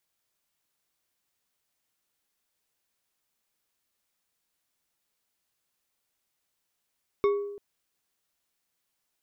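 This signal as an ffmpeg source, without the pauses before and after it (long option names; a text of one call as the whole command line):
ffmpeg -f lavfi -i "aevalsrc='0.119*pow(10,-3*t/0.92)*sin(2*PI*406*t)+0.0447*pow(10,-3*t/0.452)*sin(2*PI*1119.3*t)+0.0168*pow(10,-3*t/0.282)*sin(2*PI*2194*t)+0.00631*pow(10,-3*t/0.199)*sin(2*PI*3626.8*t)+0.00237*pow(10,-3*t/0.15)*sin(2*PI*5416*t)':duration=0.34:sample_rate=44100" out.wav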